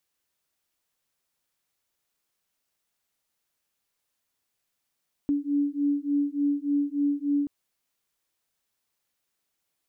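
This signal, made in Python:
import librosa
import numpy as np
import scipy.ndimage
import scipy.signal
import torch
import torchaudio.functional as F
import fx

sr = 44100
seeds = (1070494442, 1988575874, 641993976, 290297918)

y = fx.two_tone_beats(sr, length_s=2.18, hz=285.0, beat_hz=3.4, level_db=-26.0)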